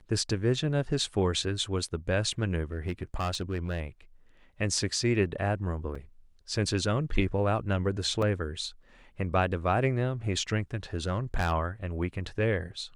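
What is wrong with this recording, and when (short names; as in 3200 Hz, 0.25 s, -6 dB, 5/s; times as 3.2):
2.72–3.8 clipped -25.5 dBFS
5.95 gap 3.9 ms
8.22 gap 3.8 ms
10.94–11.52 clipped -22 dBFS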